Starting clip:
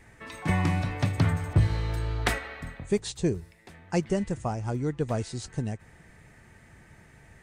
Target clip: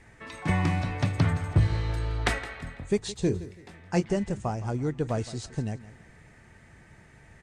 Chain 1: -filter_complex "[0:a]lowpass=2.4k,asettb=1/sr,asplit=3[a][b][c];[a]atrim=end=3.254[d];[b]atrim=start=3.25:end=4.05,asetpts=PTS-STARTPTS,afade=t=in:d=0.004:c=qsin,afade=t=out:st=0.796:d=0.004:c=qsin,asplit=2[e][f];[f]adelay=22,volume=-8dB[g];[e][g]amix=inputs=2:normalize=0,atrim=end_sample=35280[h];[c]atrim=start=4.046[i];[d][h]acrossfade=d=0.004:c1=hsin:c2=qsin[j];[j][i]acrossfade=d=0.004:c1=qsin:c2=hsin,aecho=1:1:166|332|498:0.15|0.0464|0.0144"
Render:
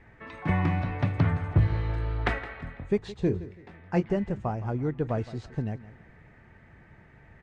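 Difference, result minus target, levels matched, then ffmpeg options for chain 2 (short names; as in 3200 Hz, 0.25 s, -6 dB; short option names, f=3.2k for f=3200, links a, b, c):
8000 Hz band -18.0 dB
-filter_complex "[0:a]lowpass=9k,asettb=1/sr,asplit=3[a][b][c];[a]atrim=end=3.254[d];[b]atrim=start=3.25:end=4.05,asetpts=PTS-STARTPTS,afade=t=in:d=0.004:c=qsin,afade=t=out:st=0.796:d=0.004:c=qsin,asplit=2[e][f];[f]adelay=22,volume=-8dB[g];[e][g]amix=inputs=2:normalize=0,atrim=end_sample=35280[h];[c]atrim=start=4.046[i];[d][h]acrossfade=d=0.004:c1=hsin:c2=qsin[j];[j][i]acrossfade=d=0.004:c1=qsin:c2=hsin,aecho=1:1:166|332|498:0.15|0.0464|0.0144"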